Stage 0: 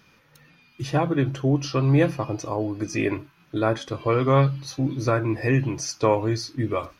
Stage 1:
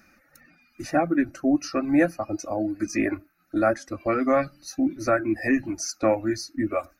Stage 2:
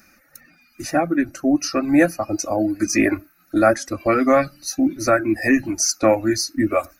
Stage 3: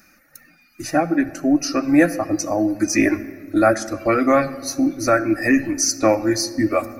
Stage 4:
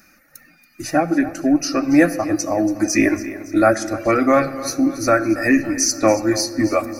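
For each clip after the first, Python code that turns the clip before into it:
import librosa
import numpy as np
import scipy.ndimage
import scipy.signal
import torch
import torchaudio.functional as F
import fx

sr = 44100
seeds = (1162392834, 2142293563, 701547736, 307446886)

y1 = fx.fixed_phaser(x, sr, hz=660.0, stages=8)
y1 = fx.dereverb_blind(y1, sr, rt60_s=0.96)
y1 = y1 * 10.0 ** (4.0 / 20.0)
y2 = fx.rider(y1, sr, range_db=10, speed_s=2.0)
y2 = fx.high_shelf(y2, sr, hz=4800.0, db=10.5)
y2 = y2 * 10.0 ** (4.5 / 20.0)
y3 = fx.room_shoebox(y2, sr, seeds[0], volume_m3=2600.0, walls='mixed', distance_m=0.49)
y4 = fx.echo_feedback(y3, sr, ms=281, feedback_pct=50, wet_db=-15.5)
y4 = y4 * 10.0 ** (1.0 / 20.0)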